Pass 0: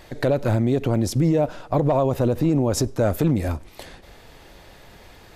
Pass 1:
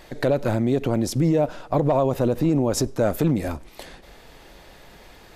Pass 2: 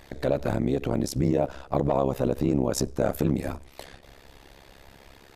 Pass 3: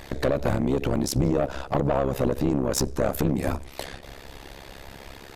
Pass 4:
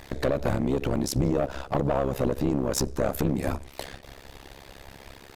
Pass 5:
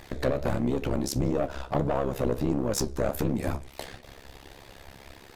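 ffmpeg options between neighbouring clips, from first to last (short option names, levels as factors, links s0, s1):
-af "equalizer=f=94:w=2.5:g=-8.5"
-af "tremolo=f=68:d=0.947"
-af "acompressor=threshold=0.0631:ratio=6,aeval=exprs='(tanh(15.8*val(0)+0.3)-tanh(0.3))/15.8':c=same,volume=2.82"
-af "aeval=exprs='sgn(val(0))*max(abs(val(0))-0.00282,0)':c=same,volume=0.841"
-af "flanger=delay=7.9:depth=8.9:regen=64:speed=1.5:shape=triangular,volume=1.33"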